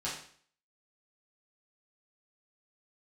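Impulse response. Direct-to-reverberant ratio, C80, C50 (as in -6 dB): -9.0 dB, 8.5 dB, 4.5 dB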